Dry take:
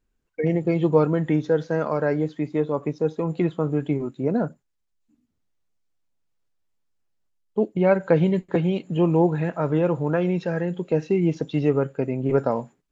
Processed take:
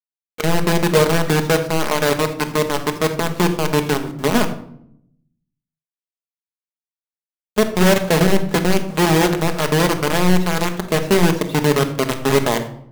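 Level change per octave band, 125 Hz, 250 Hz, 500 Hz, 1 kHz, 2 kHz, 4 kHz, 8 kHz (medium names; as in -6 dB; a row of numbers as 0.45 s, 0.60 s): +4.0 dB, +4.0 dB, +4.0 dB, +10.0 dB, +13.5 dB, +22.5 dB, no reading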